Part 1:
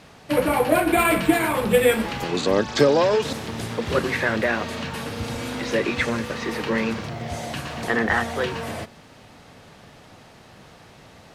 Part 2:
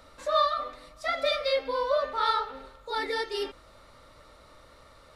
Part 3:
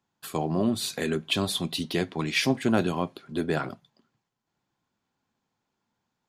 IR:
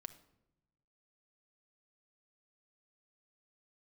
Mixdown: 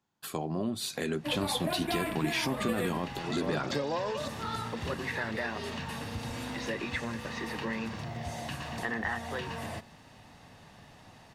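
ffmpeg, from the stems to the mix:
-filter_complex "[0:a]aecho=1:1:1.1:0.34,adelay=950,volume=0.447[s0];[1:a]adelay=2250,volume=0.376[s1];[2:a]dynaudnorm=f=910:g=3:m=3.76,alimiter=limit=0.251:level=0:latency=1,volume=0.841[s2];[s0][s1][s2]amix=inputs=3:normalize=0,acompressor=threshold=0.02:ratio=2"

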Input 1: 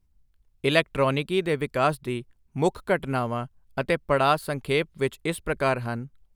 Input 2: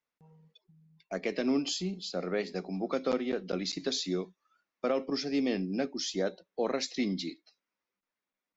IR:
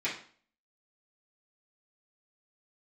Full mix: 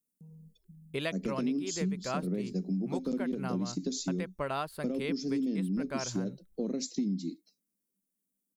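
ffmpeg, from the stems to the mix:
-filter_complex "[0:a]adelay=300,volume=0.316[s0];[1:a]firequalizer=gain_entry='entry(120,0);entry(190,12);entry(350,1);entry(790,-17);entry(1400,-19);entry(8600,12)':delay=0.05:min_phase=1,volume=1.06[s1];[s0][s1]amix=inputs=2:normalize=0,acompressor=threshold=0.0355:ratio=6"

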